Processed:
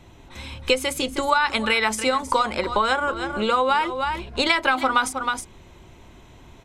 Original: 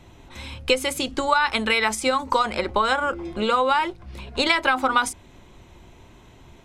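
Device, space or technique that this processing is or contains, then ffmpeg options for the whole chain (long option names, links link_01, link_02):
ducked delay: -filter_complex "[0:a]asplit=3[link_01][link_02][link_03];[link_02]adelay=316,volume=-4.5dB[link_04];[link_03]apad=whole_len=307155[link_05];[link_04][link_05]sidechaincompress=threshold=-32dB:ratio=8:attack=16:release=164[link_06];[link_01][link_06]amix=inputs=2:normalize=0"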